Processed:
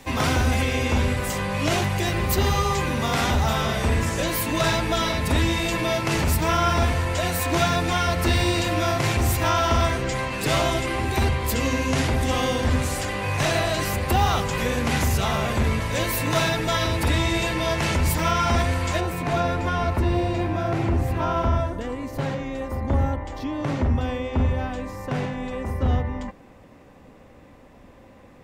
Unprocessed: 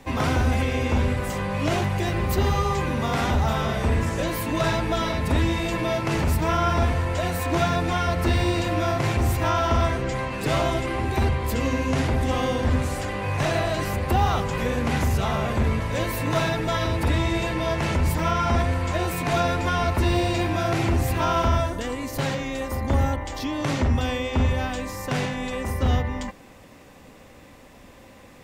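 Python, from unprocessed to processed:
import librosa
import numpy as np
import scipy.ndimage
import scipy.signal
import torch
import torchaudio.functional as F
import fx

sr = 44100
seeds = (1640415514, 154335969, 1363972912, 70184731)

y = fx.high_shelf(x, sr, hz=2300.0, db=fx.steps((0.0, 7.5), (18.99, -6.0), (19.99, -11.5)))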